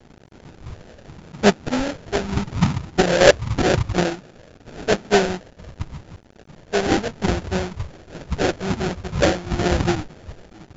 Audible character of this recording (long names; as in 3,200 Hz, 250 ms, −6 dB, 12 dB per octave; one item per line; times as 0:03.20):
a quantiser's noise floor 8 bits, dither none
phaser sweep stages 12, 0.85 Hz, lowest notch 270–1,300 Hz
aliases and images of a low sample rate 1,100 Hz, jitter 20%
MP2